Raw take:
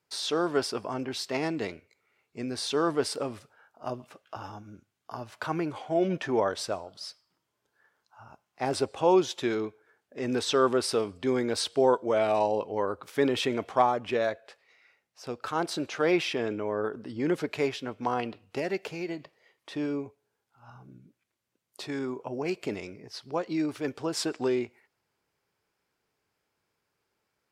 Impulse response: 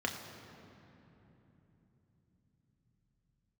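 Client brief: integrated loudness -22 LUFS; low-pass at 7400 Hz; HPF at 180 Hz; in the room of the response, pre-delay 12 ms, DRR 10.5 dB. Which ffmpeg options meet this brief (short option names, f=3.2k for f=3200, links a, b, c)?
-filter_complex "[0:a]highpass=180,lowpass=7.4k,asplit=2[a][b];[1:a]atrim=start_sample=2205,adelay=12[c];[b][c]afir=irnorm=-1:irlink=0,volume=-16dB[d];[a][d]amix=inputs=2:normalize=0,volume=7.5dB"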